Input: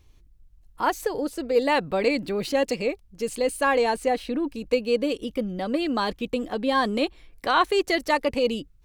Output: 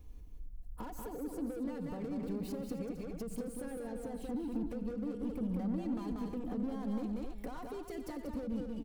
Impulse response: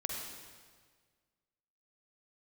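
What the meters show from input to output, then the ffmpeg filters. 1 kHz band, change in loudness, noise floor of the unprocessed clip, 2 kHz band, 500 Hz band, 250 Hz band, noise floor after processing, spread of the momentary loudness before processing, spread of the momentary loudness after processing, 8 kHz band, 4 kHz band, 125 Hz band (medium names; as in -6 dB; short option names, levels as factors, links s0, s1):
-23.5 dB, -14.5 dB, -56 dBFS, -28.0 dB, -19.0 dB, -8.0 dB, -48 dBFS, 7 LU, 8 LU, -16.0 dB, under -25 dB, -3.5 dB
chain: -filter_complex "[0:a]acompressor=threshold=0.0316:ratio=5,aecho=1:1:4.1:0.61,asoftclip=type=tanh:threshold=0.0178,equalizer=f=3500:w=0.32:g=-14.5,asplit=2[s0][s1];[s1]aecho=0:1:91|187|264|491:0.168|0.631|0.316|0.133[s2];[s0][s2]amix=inputs=2:normalize=0,acrossover=split=320[s3][s4];[s4]acompressor=threshold=0.00355:ratio=6[s5];[s3][s5]amix=inputs=2:normalize=0,volume=1.5"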